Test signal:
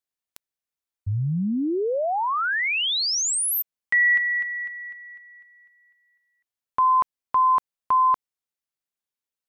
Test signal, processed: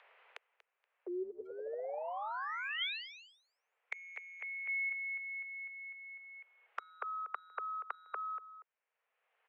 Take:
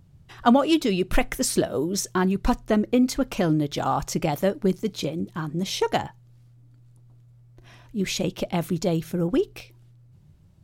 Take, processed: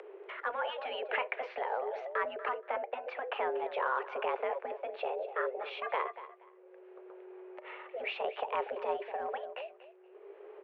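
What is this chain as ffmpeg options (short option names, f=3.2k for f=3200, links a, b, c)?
-filter_complex "[0:a]highpass=f=180:t=q:w=0.5412,highpass=f=180:t=q:w=1.307,lowpass=f=2.4k:t=q:w=0.5176,lowpass=f=2.4k:t=q:w=0.7071,lowpass=f=2.4k:t=q:w=1.932,afreqshift=250,acompressor=threshold=-25dB:ratio=6:attack=11:release=23:knee=1:detection=peak,alimiter=limit=-20.5dB:level=0:latency=1:release=41,acompressor=mode=upward:threshold=-33dB:ratio=2.5:attack=0.83:release=882:knee=2.83:detection=peak,asplit=2[a][b];[b]aecho=0:1:238|476:0.158|0.0349[c];[a][c]amix=inputs=2:normalize=0,afftfilt=real='re*lt(hypot(re,im),0.251)':imag='im*lt(hypot(re,im),0.251)':win_size=1024:overlap=0.75"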